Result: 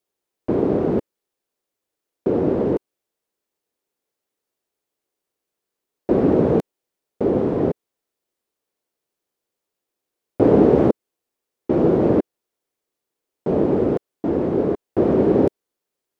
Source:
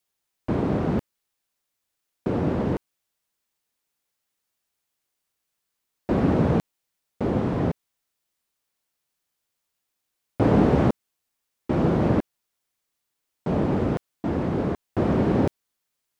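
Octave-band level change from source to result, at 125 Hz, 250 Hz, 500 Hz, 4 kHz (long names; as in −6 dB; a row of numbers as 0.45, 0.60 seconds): −1.5 dB, +4.0 dB, +8.0 dB, can't be measured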